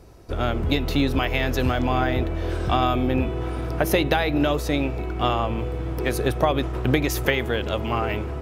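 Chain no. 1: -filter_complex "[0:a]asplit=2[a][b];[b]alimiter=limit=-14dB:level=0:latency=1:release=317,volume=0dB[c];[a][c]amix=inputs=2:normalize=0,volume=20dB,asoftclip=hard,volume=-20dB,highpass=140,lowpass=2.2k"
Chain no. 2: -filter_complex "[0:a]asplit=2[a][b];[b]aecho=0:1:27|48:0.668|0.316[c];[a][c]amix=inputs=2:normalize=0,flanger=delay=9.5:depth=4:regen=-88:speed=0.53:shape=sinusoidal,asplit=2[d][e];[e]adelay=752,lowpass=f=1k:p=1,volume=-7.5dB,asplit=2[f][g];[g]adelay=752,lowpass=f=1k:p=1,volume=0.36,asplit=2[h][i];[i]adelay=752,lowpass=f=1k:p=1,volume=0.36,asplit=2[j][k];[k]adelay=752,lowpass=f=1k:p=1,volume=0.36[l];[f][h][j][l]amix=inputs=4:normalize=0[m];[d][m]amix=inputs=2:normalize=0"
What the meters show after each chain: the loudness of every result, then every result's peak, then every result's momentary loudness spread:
-26.0, -25.5 LUFS; -14.0, -9.0 dBFS; 4, 6 LU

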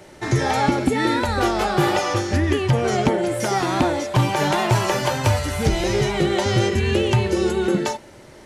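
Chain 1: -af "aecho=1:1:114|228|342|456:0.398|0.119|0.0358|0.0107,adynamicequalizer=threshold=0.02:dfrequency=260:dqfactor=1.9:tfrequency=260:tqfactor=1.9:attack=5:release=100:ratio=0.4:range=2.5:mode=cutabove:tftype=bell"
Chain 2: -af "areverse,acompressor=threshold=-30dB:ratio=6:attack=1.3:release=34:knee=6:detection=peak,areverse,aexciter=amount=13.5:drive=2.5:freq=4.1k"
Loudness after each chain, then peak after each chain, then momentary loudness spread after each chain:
-20.5, -24.0 LUFS; -8.0, -8.5 dBFS; 3, 6 LU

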